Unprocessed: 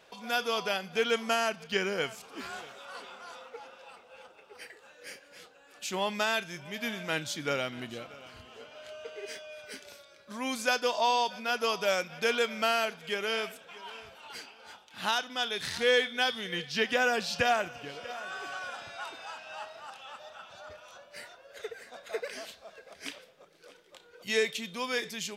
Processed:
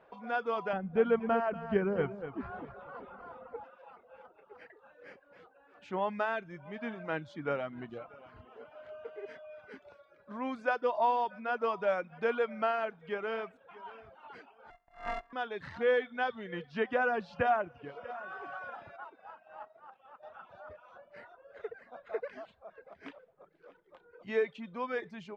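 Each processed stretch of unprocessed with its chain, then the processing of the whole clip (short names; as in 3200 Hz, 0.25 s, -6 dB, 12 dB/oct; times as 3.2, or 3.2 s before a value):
0.73–3.64 RIAA curve playback + echo 0.239 s -9 dB
14.7–15.33 sample sorter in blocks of 64 samples + high shelf 6600 Hz +5.5 dB + ring modulator 1400 Hz
18.96–20.23 G.711 law mismatch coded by A + HPF 450 Hz 6 dB/oct + tilt -2.5 dB/oct
whole clip: Chebyshev low-pass 1200 Hz, order 2; reverb removal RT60 0.59 s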